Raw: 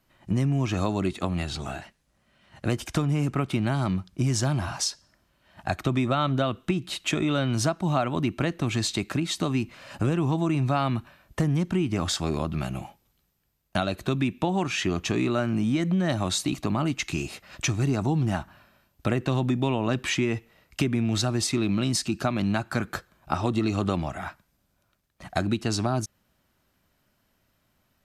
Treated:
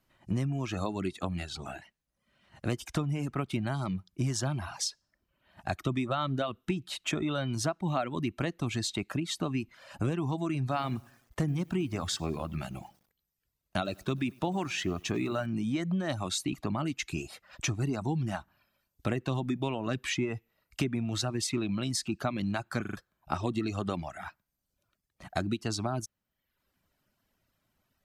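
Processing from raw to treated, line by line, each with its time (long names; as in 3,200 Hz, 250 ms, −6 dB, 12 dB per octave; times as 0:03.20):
0:10.62–0:15.46: feedback echo at a low word length 99 ms, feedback 55%, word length 7 bits, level −14.5 dB
0:22.81: stutter in place 0.04 s, 4 plays
whole clip: reverb reduction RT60 0.76 s; level −5 dB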